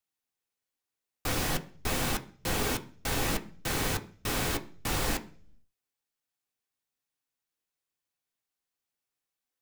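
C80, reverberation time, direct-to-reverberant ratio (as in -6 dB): 21.5 dB, 0.45 s, 4.5 dB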